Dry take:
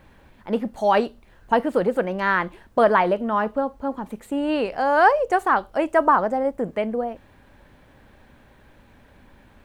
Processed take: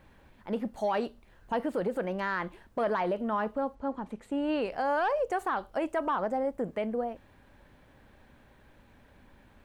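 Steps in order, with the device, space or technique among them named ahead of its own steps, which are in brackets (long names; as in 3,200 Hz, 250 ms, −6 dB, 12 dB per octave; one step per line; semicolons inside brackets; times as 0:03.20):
0:03.75–0:04.62: high-frequency loss of the air 58 metres
soft clipper into limiter (soft clipping −7.5 dBFS, distortion −22 dB; brickwall limiter −16 dBFS, peak gain reduction 7.5 dB)
level −6 dB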